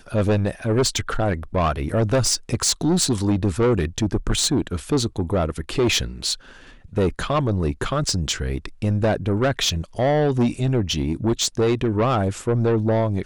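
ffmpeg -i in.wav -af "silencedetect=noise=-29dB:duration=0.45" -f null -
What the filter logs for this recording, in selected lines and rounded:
silence_start: 6.34
silence_end: 6.97 | silence_duration: 0.62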